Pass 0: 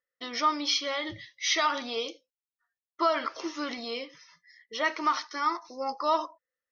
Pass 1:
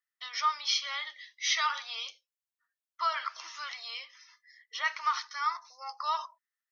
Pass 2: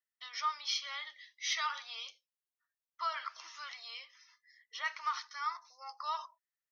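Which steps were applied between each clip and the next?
HPF 1000 Hz 24 dB/oct; gain -1.5 dB
hard clip -18 dBFS, distortion -41 dB; gain -6 dB

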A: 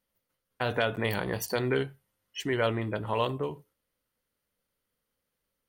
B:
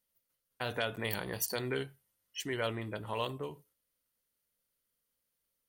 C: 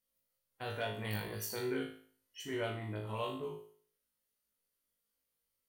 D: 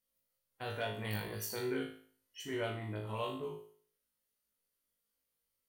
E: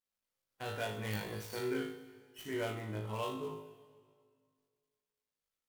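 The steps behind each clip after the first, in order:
high shelf 3800 Hz +11.5 dB; gain -8 dB
harmonic-percussive split harmonic +8 dB; resonator 53 Hz, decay 0.49 s, harmonics all, mix 100%; gain +1.5 dB
nothing audible
switching dead time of 0.068 ms; plate-style reverb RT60 2 s, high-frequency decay 0.9×, DRR 11.5 dB

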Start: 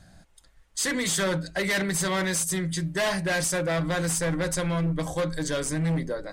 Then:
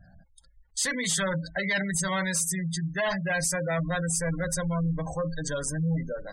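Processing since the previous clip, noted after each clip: spectral gate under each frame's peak -20 dB strong; bell 350 Hz -13.5 dB 0.57 oct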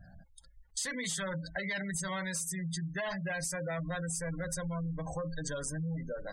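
compressor 4:1, threshold -35 dBFS, peak gain reduction 9.5 dB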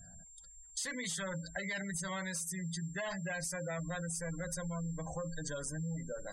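whine 7400 Hz -51 dBFS; gain -3 dB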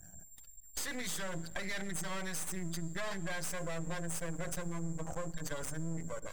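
half-wave rectifier; on a send at -20 dB: reverb RT60 3.0 s, pre-delay 46 ms; on the sum: gain +4 dB

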